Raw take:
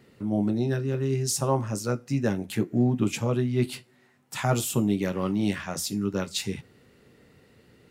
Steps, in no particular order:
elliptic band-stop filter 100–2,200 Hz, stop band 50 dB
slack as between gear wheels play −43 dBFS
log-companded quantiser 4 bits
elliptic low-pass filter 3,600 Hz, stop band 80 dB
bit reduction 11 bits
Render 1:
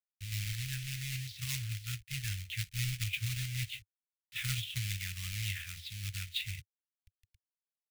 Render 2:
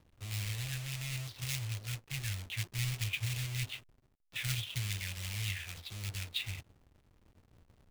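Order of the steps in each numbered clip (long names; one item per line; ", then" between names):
bit reduction, then slack as between gear wheels, then elliptic low-pass filter, then log-companded quantiser, then elliptic band-stop filter
elliptic low-pass filter, then bit reduction, then log-companded quantiser, then elliptic band-stop filter, then slack as between gear wheels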